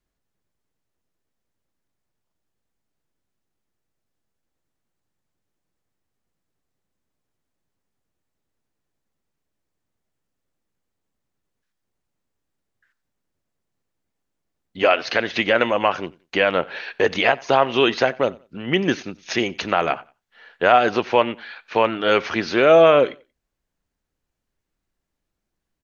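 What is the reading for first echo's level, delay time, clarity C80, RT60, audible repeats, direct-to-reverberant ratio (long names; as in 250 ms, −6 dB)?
−23.5 dB, 91 ms, no reverb audible, no reverb audible, 1, no reverb audible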